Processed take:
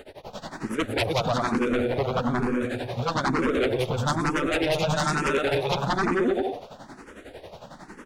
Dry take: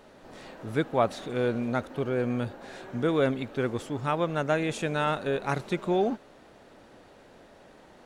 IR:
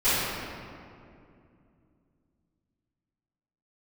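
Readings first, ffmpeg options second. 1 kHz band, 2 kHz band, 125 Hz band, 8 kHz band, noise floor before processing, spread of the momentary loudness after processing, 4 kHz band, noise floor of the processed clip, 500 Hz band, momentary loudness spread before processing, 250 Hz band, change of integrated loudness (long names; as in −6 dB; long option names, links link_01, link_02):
+4.5 dB, +6.5 dB, +4.0 dB, +9.5 dB, −54 dBFS, 20 LU, +9.0 dB, −49 dBFS, +2.5 dB, 10 LU, +3.5 dB, +3.5 dB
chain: -filter_complex "[0:a]tremolo=f=11:d=0.95,asplit=2[link_01][link_02];[link_02]aecho=0:1:180|306|394.2|455.9|499.2:0.631|0.398|0.251|0.158|0.1[link_03];[link_01][link_03]amix=inputs=2:normalize=0,aeval=exprs='0.266*sin(PI/2*6.31*val(0)/0.266)':channel_layout=same,asplit=2[link_04][link_05];[link_05]afreqshift=1.1[link_06];[link_04][link_06]amix=inputs=2:normalize=1,volume=-5.5dB"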